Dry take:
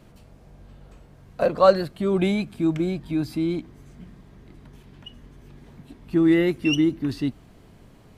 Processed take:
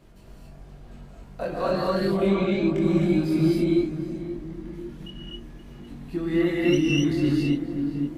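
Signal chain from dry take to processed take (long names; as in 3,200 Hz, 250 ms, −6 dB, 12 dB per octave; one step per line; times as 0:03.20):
brickwall limiter −16 dBFS, peak gain reduction 12 dB
feedback echo with a low-pass in the loop 526 ms, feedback 42%, low-pass 1,300 Hz, level −7.5 dB
multi-voice chorus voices 6, 0.27 Hz, delay 23 ms, depth 3 ms
0:02.07–0:02.69: high-frequency loss of the air 120 metres
reverb whose tail is shaped and stops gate 290 ms rising, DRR −4 dB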